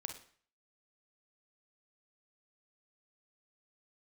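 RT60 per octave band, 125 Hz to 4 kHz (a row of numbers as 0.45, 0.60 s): 0.50, 0.45, 0.45, 0.50, 0.50, 0.45 s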